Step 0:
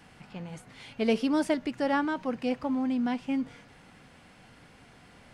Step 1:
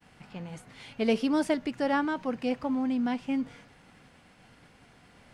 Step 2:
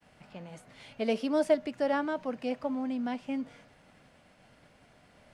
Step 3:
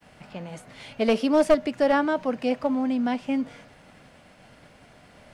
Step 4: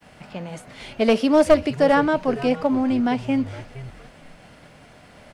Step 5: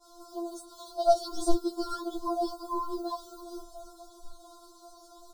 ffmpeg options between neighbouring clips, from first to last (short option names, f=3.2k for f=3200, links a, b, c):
-af "agate=range=-33dB:threshold=-51dB:ratio=3:detection=peak"
-filter_complex "[0:a]equalizer=f=610:t=o:w=0.24:g=10.5,acrossover=split=160|740[a][b][c];[a]acompressor=threshold=-54dB:ratio=6[d];[d][b][c]amix=inputs=3:normalize=0,volume=-4dB"
-af "aeval=exprs='clip(val(0),-1,0.0631)':c=same,volume=8dB"
-filter_complex "[0:a]asplit=4[a][b][c][d];[b]adelay=465,afreqshift=-140,volume=-15dB[e];[c]adelay=930,afreqshift=-280,volume=-25.5dB[f];[d]adelay=1395,afreqshift=-420,volume=-35.9dB[g];[a][e][f][g]amix=inputs=4:normalize=0,volume=4dB"
-af "acrusher=bits=7:mix=0:aa=0.5,asuperstop=centerf=2200:order=12:qfactor=0.92,afftfilt=real='re*4*eq(mod(b,16),0)':imag='im*4*eq(mod(b,16),0)':win_size=2048:overlap=0.75"